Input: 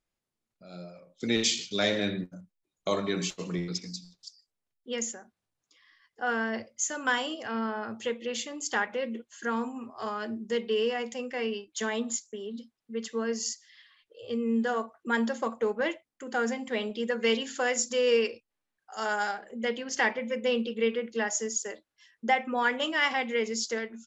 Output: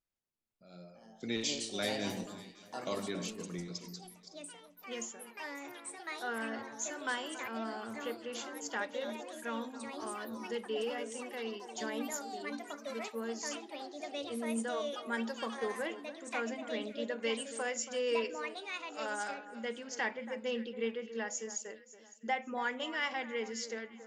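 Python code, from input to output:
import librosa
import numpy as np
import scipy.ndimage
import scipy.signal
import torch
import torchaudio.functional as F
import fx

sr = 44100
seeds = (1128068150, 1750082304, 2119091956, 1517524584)

y = fx.echo_pitch(x, sr, ms=459, semitones=4, count=3, db_per_echo=-6.0)
y = fx.echo_alternate(y, sr, ms=279, hz=1700.0, feedback_pct=53, wet_db=-12.5)
y = F.gain(torch.from_numpy(y), -9.0).numpy()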